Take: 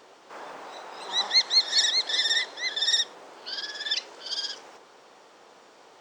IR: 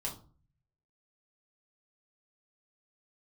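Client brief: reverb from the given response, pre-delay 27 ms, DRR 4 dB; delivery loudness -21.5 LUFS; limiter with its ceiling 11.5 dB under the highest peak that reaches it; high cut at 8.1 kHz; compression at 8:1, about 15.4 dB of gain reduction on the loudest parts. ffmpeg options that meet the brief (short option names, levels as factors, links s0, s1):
-filter_complex "[0:a]lowpass=8100,acompressor=threshold=0.0224:ratio=8,alimiter=level_in=3.35:limit=0.0631:level=0:latency=1,volume=0.299,asplit=2[s0][s1];[1:a]atrim=start_sample=2205,adelay=27[s2];[s1][s2]afir=irnorm=-1:irlink=0,volume=0.562[s3];[s0][s3]amix=inputs=2:normalize=0,volume=10"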